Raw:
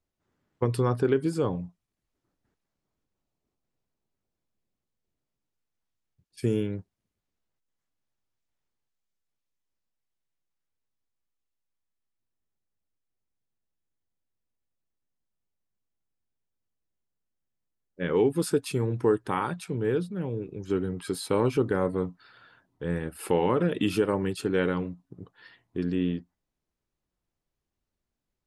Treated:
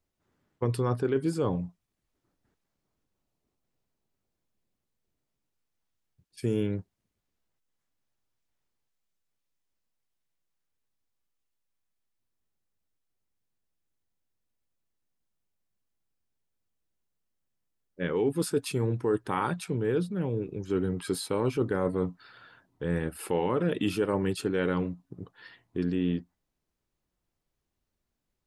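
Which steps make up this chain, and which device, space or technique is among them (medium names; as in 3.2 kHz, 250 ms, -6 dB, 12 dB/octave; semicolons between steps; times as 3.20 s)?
compression on the reversed sound (reverse; compression, threshold -25 dBFS, peak gain reduction 7.5 dB; reverse); trim +2 dB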